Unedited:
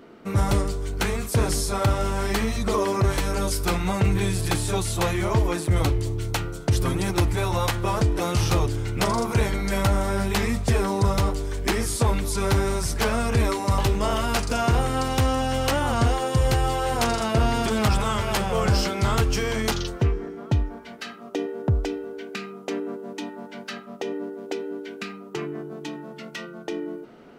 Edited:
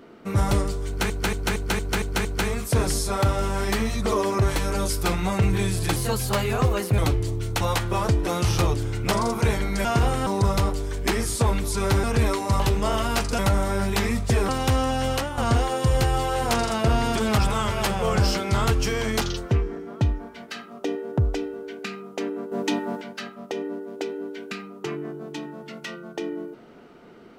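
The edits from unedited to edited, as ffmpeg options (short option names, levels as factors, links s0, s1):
-filter_complex "[0:a]asplit=18[s0][s1][s2][s3][s4][s5][s6][s7][s8][s9][s10][s11][s12][s13][s14][s15][s16][s17];[s0]atrim=end=1.102[s18];[s1]atrim=start=0.868:end=1.102[s19];[s2]atrim=start=0.868:end=1.102[s20];[s3]atrim=start=0.868:end=1.102[s21];[s4]atrim=start=0.868:end=1.102[s22];[s5]atrim=start=0.868:end=1.102[s23];[s6]atrim=start=0.868:end=4.584[s24];[s7]atrim=start=4.58:end=5.77,asetpts=PTS-STARTPTS,asetrate=51156,aresample=44100[s25];[s8]atrim=start=5.766:end=6.392[s26];[s9]atrim=start=7.528:end=9.772[s27];[s10]atrim=start=14.568:end=14.992[s28];[s11]atrim=start=10.868:end=12.642[s29];[s12]atrim=start=13.218:end=14.572[s30];[s13]atrim=start=9.768:end=10.872[s31];[s14]atrim=start=14.988:end=15.88,asetpts=PTS-STARTPTS,afade=t=out:st=0.642:d=0.25:c=qua:silence=0.354813[s32];[s15]atrim=start=15.88:end=23.022,asetpts=PTS-STARTPTS,afade=t=in:d=0.004:c=hsin:silence=0.354813[s33];[s16]atrim=start=23.018:end=23.522,asetpts=PTS-STARTPTS,volume=2.66[s34];[s17]atrim=start=23.518[s35];[s18][s19]acrossfade=d=0.004:c1=hsin:c2=hsin[s36];[s36][s20]acrossfade=d=0.004:c1=hsin:c2=hsin[s37];[s37][s21]acrossfade=d=0.004:c1=hsin:c2=hsin[s38];[s38][s22]acrossfade=d=0.004:c1=hsin:c2=hsin[s39];[s39][s23]acrossfade=d=0.004:c1=hsin:c2=hsin[s40];[s40][s24]acrossfade=d=0.004:c1=hsin:c2=hsin[s41];[s41][s25]acrossfade=d=0.004:c1=hsin:c2=hsin[s42];[s42][s26]acrossfade=d=0.004:c1=hsin:c2=hsin[s43];[s43][s27]acrossfade=d=0.004:c1=hsin:c2=hsin[s44];[s44][s28]acrossfade=d=0.004:c1=hsin:c2=hsin[s45];[s45][s29]acrossfade=d=0.004:c1=hsin:c2=hsin[s46];[s46][s30]acrossfade=d=0.004:c1=hsin:c2=hsin[s47];[s47][s31]acrossfade=d=0.004:c1=hsin:c2=hsin[s48];[s32][s33]concat=n=2:v=0:a=1[s49];[s48][s49]acrossfade=d=0.004:c1=hsin:c2=hsin[s50];[s50][s34]acrossfade=d=0.004:c1=hsin:c2=hsin[s51];[s51][s35]acrossfade=d=0.004:c1=hsin:c2=hsin"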